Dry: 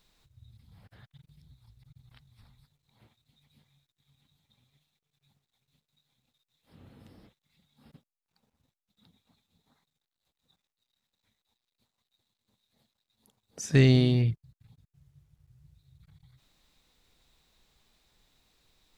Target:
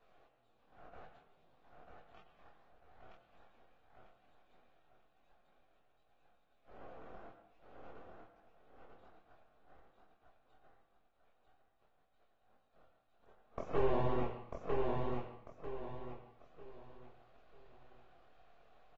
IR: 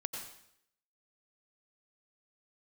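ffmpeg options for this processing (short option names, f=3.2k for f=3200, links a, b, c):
-filter_complex "[0:a]highpass=230,equalizer=f=430:t=o:w=1.7:g=12,acrossover=split=420|1100[a][b][c];[a]acompressor=threshold=-24dB:ratio=4[d];[b]acompressor=threshold=-34dB:ratio=4[e];[c]acompressor=threshold=-50dB:ratio=4[f];[d][e][f]amix=inputs=3:normalize=0,asplit=2[g][h];[h]alimiter=limit=-20dB:level=0:latency=1:release=461,volume=-3dB[i];[g][i]amix=inputs=2:normalize=0,asplit=3[j][k][l];[j]bandpass=f=730:t=q:w=8,volume=0dB[m];[k]bandpass=f=1.09k:t=q:w=8,volume=-6dB[n];[l]bandpass=f=2.44k:t=q:w=8,volume=-9dB[o];[m][n][o]amix=inputs=3:normalize=0,aeval=exprs='max(val(0),0)':c=same,flanger=delay=15.5:depth=7.4:speed=2.6,asplit=2[p][q];[q]adelay=25,volume=-4dB[r];[p][r]amix=inputs=2:normalize=0,aecho=1:1:945|1890|2835|3780:0.708|0.241|0.0818|0.0278,asplit=2[s][t];[1:a]atrim=start_sample=2205,lowpass=2.9k[u];[t][u]afir=irnorm=-1:irlink=0,volume=1dB[v];[s][v]amix=inputs=2:normalize=0,volume=6dB" -ar 48000 -c:a aac -b:a 24k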